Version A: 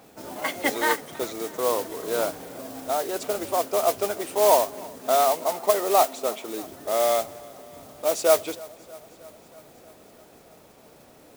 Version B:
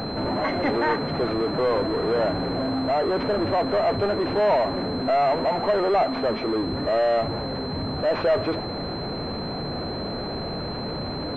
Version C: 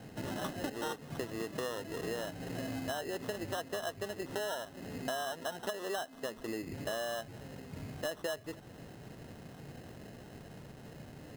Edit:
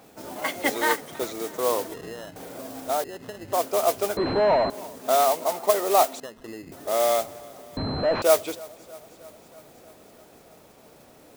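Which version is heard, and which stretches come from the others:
A
1.94–2.36 s: from C
3.04–3.53 s: from C
4.17–4.70 s: from B
6.20–6.72 s: from C
7.77–8.22 s: from B

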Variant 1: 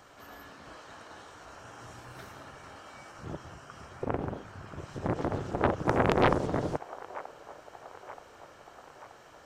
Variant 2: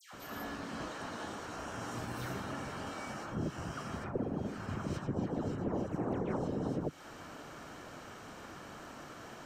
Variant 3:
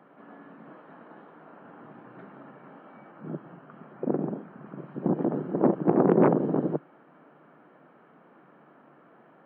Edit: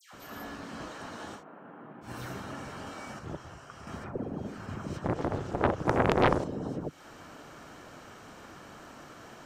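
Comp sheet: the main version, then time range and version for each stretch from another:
2
1.39–2.06 s: from 3, crossfade 0.10 s
3.19–3.87 s: from 1
5.04–6.44 s: from 1

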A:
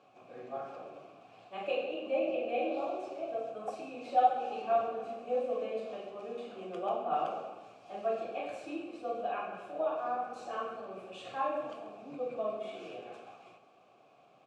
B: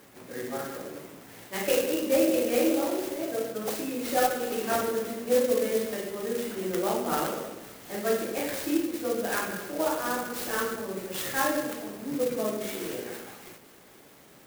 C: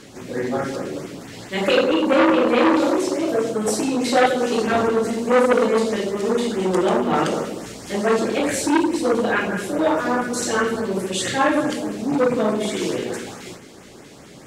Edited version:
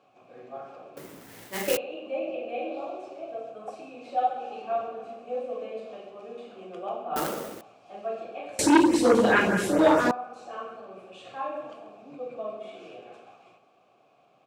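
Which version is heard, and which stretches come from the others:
A
0.97–1.77 s: from B
7.16–7.61 s: from B
8.59–10.11 s: from C

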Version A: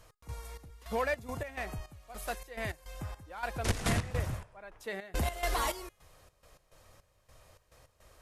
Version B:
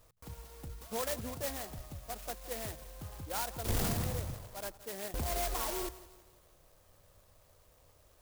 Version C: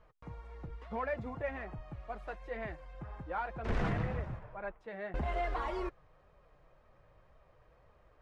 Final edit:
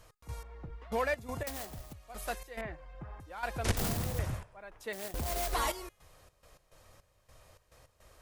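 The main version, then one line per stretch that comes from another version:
A
0.43–0.92 s: from C
1.47–1.93 s: from B
2.61–3.20 s: from C
3.77–4.19 s: from B
4.93–5.53 s: from B

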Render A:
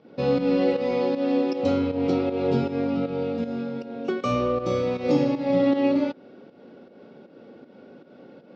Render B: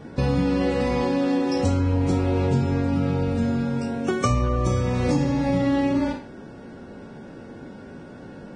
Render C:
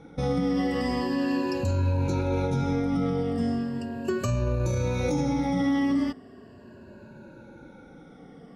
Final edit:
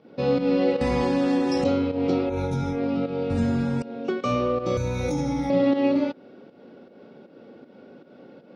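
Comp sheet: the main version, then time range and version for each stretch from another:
A
0.81–1.64 s: from B
2.32–2.76 s: from C, crossfade 0.16 s
3.30–3.82 s: from B
4.77–5.50 s: from C

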